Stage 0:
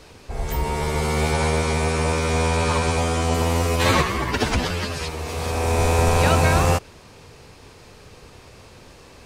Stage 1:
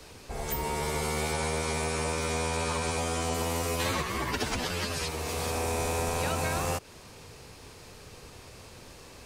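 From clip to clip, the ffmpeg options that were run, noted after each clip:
ffmpeg -i in.wav -filter_complex "[0:a]highshelf=frequency=6500:gain=8,acrossover=split=140|320[link_01][link_02][link_03];[link_01]acompressor=threshold=-35dB:ratio=4[link_04];[link_02]acompressor=threshold=-36dB:ratio=4[link_05];[link_03]acompressor=threshold=-26dB:ratio=4[link_06];[link_04][link_05][link_06]amix=inputs=3:normalize=0,volume=-3.5dB" out.wav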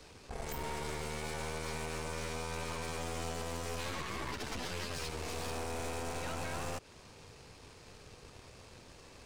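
ffmpeg -i in.wav -af "equalizer=frequency=13000:width=1.3:gain=-11.5,alimiter=limit=-21.5dB:level=0:latency=1:release=125,aeval=exprs='(tanh(56.2*val(0)+0.8)-tanh(0.8))/56.2':channel_layout=same,volume=-1dB" out.wav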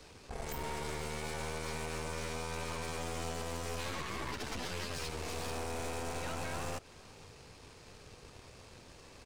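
ffmpeg -i in.wav -af "aecho=1:1:480:0.0631" out.wav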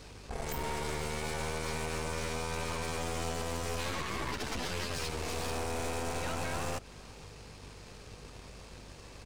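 ffmpeg -i in.wav -af "aeval=exprs='val(0)+0.00158*(sin(2*PI*50*n/s)+sin(2*PI*2*50*n/s)/2+sin(2*PI*3*50*n/s)/3+sin(2*PI*4*50*n/s)/4+sin(2*PI*5*50*n/s)/5)':channel_layout=same,volume=3.5dB" out.wav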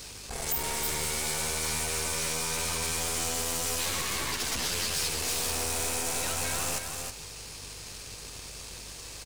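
ffmpeg -i in.wav -filter_complex "[0:a]asplit=2[link_01][link_02];[link_02]aecho=0:1:318:0.422[link_03];[link_01][link_03]amix=inputs=2:normalize=0,crystalizer=i=5.5:c=0,asoftclip=type=tanh:threshold=-23.5dB" out.wav

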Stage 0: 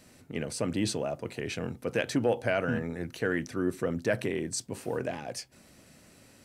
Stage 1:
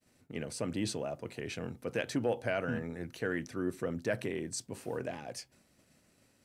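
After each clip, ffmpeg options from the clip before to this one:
ffmpeg -i in.wav -af "agate=range=-33dB:threshold=-50dB:ratio=3:detection=peak,volume=-5dB" out.wav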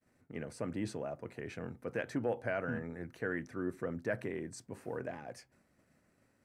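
ffmpeg -i in.wav -af "highshelf=frequency=2400:width_type=q:width=1.5:gain=-7.5,volume=-3dB" out.wav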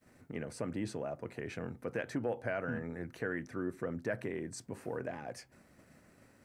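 ffmpeg -i in.wav -af "acompressor=threshold=-60dB:ratio=1.5,volume=9.5dB" out.wav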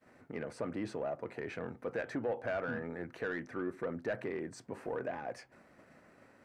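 ffmpeg -i in.wav -filter_complex "[0:a]asplit=2[link_01][link_02];[link_02]highpass=frequency=720:poles=1,volume=15dB,asoftclip=type=tanh:threshold=-23dB[link_03];[link_01][link_03]amix=inputs=2:normalize=0,lowpass=frequency=1200:poles=1,volume=-6dB,volume=-1.5dB" out.wav

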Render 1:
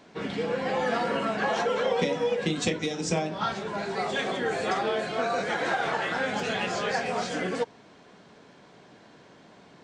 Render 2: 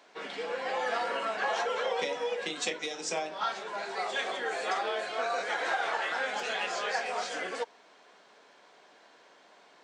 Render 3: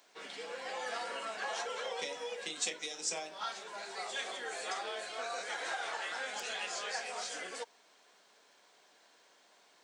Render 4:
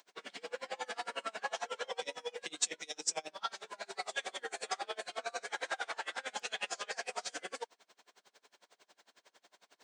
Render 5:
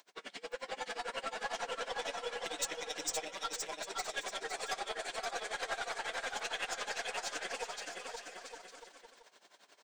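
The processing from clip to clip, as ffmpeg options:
ffmpeg -i in.wav -af "highpass=560,volume=-2dB" out.wav
ffmpeg -i in.wav -af "aemphasis=mode=production:type=75fm,volume=-8.5dB" out.wav
ffmpeg -i in.wav -af "aeval=exprs='val(0)*pow(10,-30*(0.5-0.5*cos(2*PI*11*n/s))/20)':channel_layout=same,volume=5dB" out.wav
ffmpeg -i in.wav -filter_complex "[0:a]aeval=exprs='(tanh(31.6*val(0)+0.2)-tanh(0.2))/31.6':channel_layout=same,asplit=2[link_01][link_02];[link_02]aecho=0:1:520|910|1202|1422|1586:0.631|0.398|0.251|0.158|0.1[link_03];[link_01][link_03]amix=inputs=2:normalize=0,volume=1dB" out.wav

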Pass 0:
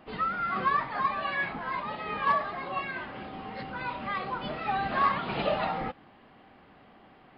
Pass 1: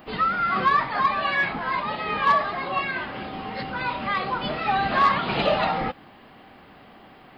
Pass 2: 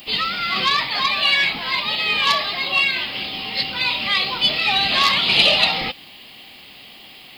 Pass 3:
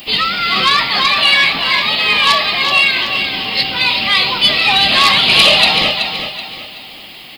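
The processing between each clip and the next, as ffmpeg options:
ffmpeg -i in.wav -af "aemphasis=mode=production:type=50kf,asoftclip=type=tanh:threshold=-14.5dB,volume=6.5dB" out.wav
ffmpeg -i in.wav -af "aexciter=amount=7.3:drive=8.1:freq=2300,volume=-2dB" out.wav
ffmpeg -i in.wav -af "aecho=1:1:378|756|1134|1512:0.398|0.143|0.0516|0.0186,aeval=exprs='0.944*sin(PI/2*1.58*val(0)/0.944)':channel_layout=same,volume=-1dB" out.wav

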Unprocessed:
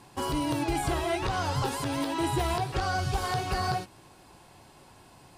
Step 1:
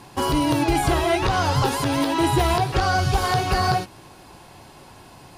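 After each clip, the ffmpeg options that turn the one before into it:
ffmpeg -i in.wav -af "equalizer=frequency=8100:width=6:gain=-6,volume=8.5dB" out.wav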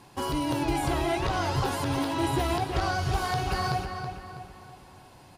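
ffmpeg -i in.wav -filter_complex "[0:a]asplit=2[link_01][link_02];[link_02]adelay=325,lowpass=frequency=3500:poles=1,volume=-6.5dB,asplit=2[link_03][link_04];[link_04]adelay=325,lowpass=frequency=3500:poles=1,volume=0.46,asplit=2[link_05][link_06];[link_06]adelay=325,lowpass=frequency=3500:poles=1,volume=0.46,asplit=2[link_07][link_08];[link_08]adelay=325,lowpass=frequency=3500:poles=1,volume=0.46,asplit=2[link_09][link_10];[link_10]adelay=325,lowpass=frequency=3500:poles=1,volume=0.46[link_11];[link_01][link_03][link_05][link_07][link_09][link_11]amix=inputs=6:normalize=0,volume=-8dB" out.wav

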